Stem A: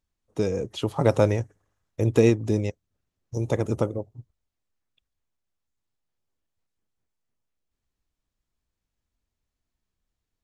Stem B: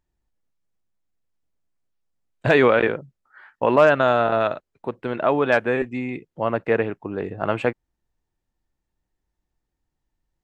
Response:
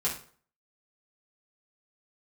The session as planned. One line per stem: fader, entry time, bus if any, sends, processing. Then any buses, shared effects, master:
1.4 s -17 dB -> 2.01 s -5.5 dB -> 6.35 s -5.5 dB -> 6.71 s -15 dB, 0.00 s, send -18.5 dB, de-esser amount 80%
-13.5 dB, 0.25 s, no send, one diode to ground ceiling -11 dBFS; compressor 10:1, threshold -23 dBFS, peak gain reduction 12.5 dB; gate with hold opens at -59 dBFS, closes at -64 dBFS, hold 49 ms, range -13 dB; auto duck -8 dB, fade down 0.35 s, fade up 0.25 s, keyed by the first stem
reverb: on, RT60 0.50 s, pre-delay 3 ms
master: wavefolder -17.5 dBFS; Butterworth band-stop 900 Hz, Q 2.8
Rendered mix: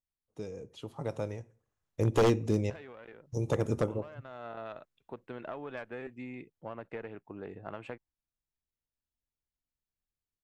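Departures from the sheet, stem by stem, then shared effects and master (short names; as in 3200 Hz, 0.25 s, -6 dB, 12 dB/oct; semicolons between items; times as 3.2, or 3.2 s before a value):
stem A: missing de-esser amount 80%; master: missing Butterworth band-stop 900 Hz, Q 2.8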